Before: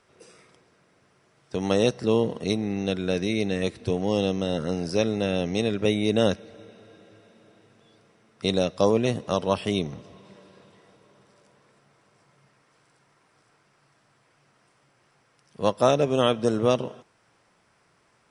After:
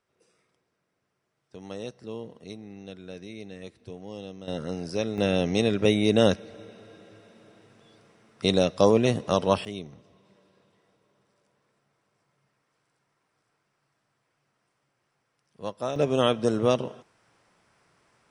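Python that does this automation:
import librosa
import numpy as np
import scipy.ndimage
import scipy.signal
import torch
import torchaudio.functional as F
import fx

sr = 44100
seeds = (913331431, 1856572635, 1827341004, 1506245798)

y = fx.gain(x, sr, db=fx.steps((0.0, -15.5), (4.48, -5.0), (5.18, 1.5), (9.65, -11.0), (15.96, -1.0)))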